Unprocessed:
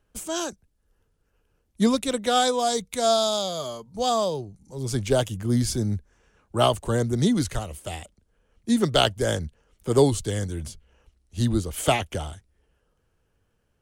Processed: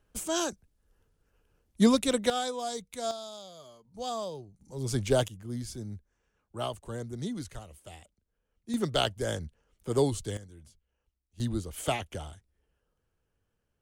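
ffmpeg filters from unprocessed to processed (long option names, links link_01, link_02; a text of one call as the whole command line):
ffmpeg -i in.wav -af "asetnsamples=nb_out_samples=441:pad=0,asendcmd='2.3 volume volume -11dB;3.11 volume volume -19dB;3.85 volume volume -11.5dB;4.61 volume volume -3.5dB;5.28 volume volume -14dB;8.74 volume volume -7.5dB;10.37 volume volume -20dB;11.4 volume volume -8.5dB',volume=-1dB" out.wav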